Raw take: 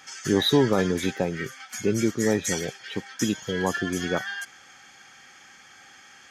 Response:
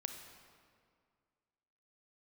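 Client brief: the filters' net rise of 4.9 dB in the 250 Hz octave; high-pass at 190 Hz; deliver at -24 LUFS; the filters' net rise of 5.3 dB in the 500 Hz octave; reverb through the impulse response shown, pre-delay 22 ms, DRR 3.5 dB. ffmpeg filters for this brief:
-filter_complex "[0:a]highpass=190,equalizer=f=250:t=o:g=6.5,equalizer=f=500:t=o:g=4.5,asplit=2[a][b];[1:a]atrim=start_sample=2205,adelay=22[c];[b][c]afir=irnorm=-1:irlink=0,volume=-2dB[d];[a][d]amix=inputs=2:normalize=0,volume=-3.5dB"

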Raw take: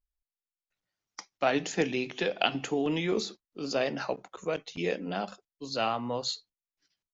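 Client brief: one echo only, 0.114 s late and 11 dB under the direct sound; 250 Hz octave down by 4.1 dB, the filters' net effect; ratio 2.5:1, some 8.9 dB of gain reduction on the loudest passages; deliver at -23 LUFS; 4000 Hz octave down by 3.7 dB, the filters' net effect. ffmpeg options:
-af "equalizer=f=250:t=o:g=-5.5,equalizer=f=4k:t=o:g=-5,acompressor=threshold=-35dB:ratio=2.5,aecho=1:1:114:0.282,volume=15.5dB"

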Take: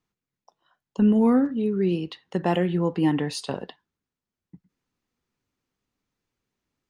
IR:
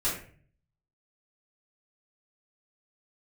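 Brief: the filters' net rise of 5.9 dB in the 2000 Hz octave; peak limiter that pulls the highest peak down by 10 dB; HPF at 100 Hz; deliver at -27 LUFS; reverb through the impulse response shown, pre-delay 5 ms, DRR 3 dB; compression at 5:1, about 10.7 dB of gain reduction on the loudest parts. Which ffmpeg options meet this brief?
-filter_complex "[0:a]highpass=100,equalizer=f=2k:t=o:g=7,acompressor=threshold=-27dB:ratio=5,alimiter=level_in=1dB:limit=-24dB:level=0:latency=1,volume=-1dB,asplit=2[a][b];[1:a]atrim=start_sample=2205,adelay=5[c];[b][c]afir=irnorm=-1:irlink=0,volume=-11dB[d];[a][d]amix=inputs=2:normalize=0,volume=5dB"

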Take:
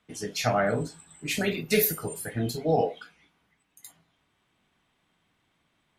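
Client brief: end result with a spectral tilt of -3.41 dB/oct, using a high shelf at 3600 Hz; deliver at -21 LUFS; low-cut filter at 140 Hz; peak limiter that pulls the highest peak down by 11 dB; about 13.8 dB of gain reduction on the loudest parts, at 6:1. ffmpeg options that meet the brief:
-af "highpass=140,highshelf=f=3.6k:g=6,acompressor=threshold=-30dB:ratio=6,volume=17.5dB,alimiter=limit=-11dB:level=0:latency=1"

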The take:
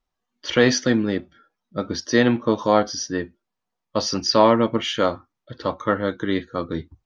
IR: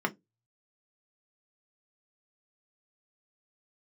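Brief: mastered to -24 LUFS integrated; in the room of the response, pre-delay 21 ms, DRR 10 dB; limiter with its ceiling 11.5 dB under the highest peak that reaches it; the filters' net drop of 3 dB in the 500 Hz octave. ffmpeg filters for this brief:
-filter_complex "[0:a]equalizer=f=500:t=o:g=-3.5,alimiter=limit=-16dB:level=0:latency=1,asplit=2[a][b];[1:a]atrim=start_sample=2205,adelay=21[c];[b][c]afir=irnorm=-1:irlink=0,volume=-18.5dB[d];[a][d]amix=inputs=2:normalize=0,volume=3.5dB"

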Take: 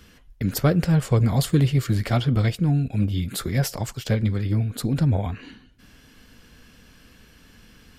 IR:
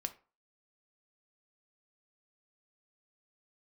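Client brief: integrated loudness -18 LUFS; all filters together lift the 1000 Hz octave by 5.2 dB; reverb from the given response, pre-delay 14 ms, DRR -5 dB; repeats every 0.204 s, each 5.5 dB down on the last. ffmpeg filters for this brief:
-filter_complex "[0:a]equalizer=f=1k:t=o:g=7.5,aecho=1:1:204|408|612|816|1020|1224|1428:0.531|0.281|0.149|0.079|0.0419|0.0222|0.0118,asplit=2[a][b];[1:a]atrim=start_sample=2205,adelay=14[c];[b][c]afir=irnorm=-1:irlink=0,volume=6dB[d];[a][d]amix=inputs=2:normalize=0,volume=-3.5dB"

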